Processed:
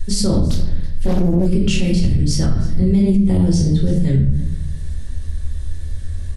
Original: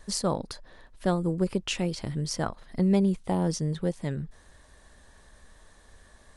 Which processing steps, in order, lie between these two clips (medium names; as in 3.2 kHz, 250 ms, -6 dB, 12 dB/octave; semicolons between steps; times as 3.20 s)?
amplifier tone stack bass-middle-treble 10-0-1; reverberation RT60 0.70 s, pre-delay 5 ms, DRR -2.5 dB; in parallel at -2.5 dB: compression, threshold -45 dBFS, peak gain reduction 15.5 dB; on the sum: peaking EQ 82 Hz +10 dB 0.64 oct; on a send: delay 325 ms -21 dB; on the sum: flange 1.5 Hz, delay 9.9 ms, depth 4.7 ms, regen -58%; hum notches 50/100/150 Hz; doubling 24 ms -11.5 dB; loudness maximiser +34.5 dB; 0.50–1.46 s: loudspeaker Doppler distortion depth 0.78 ms; trim -6 dB